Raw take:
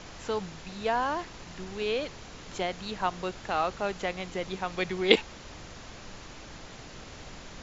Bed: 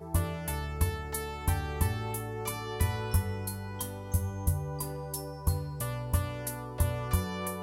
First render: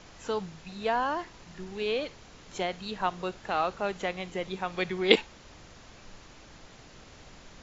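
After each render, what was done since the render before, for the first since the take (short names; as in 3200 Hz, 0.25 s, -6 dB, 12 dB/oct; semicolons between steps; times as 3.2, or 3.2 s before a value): noise print and reduce 6 dB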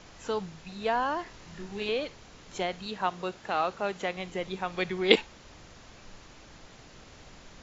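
1.23–1.89 doubler 25 ms -4 dB; 2.86–4.17 HPF 110 Hz 6 dB/oct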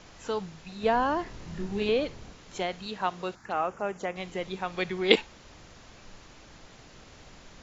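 0.83–2.33 low shelf 490 Hz +9 dB; 3.35–4.16 envelope phaser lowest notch 430 Hz, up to 4100 Hz, full sweep at -28.5 dBFS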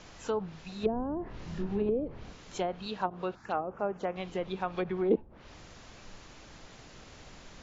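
treble ducked by the level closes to 380 Hz, closed at -23 dBFS; dynamic EQ 2000 Hz, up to -6 dB, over -57 dBFS, Q 3.3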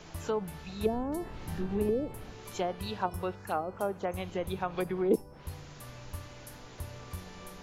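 add bed -13.5 dB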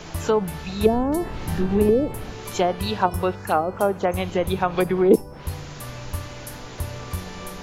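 gain +11.5 dB; limiter -3 dBFS, peak gain reduction 1 dB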